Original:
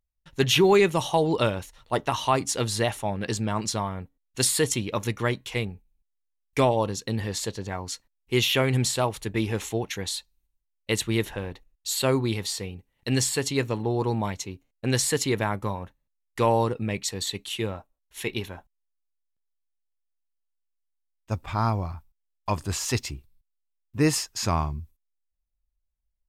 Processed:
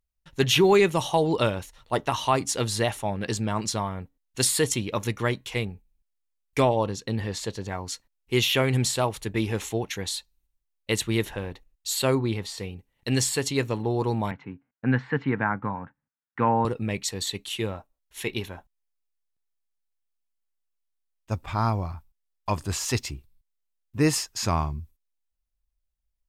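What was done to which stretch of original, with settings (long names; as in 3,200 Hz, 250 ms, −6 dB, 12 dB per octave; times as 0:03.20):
0:06.62–0:07.50: high-shelf EQ 7,000 Hz −9 dB
0:12.15–0:12.58: high-shelf EQ 3,700 Hz −10 dB
0:14.31–0:16.65: loudspeaker in its box 130–2,100 Hz, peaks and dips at 140 Hz +7 dB, 250 Hz +6 dB, 380 Hz −7 dB, 590 Hz −7 dB, 850 Hz +3 dB, 1,500 Hz +8 dB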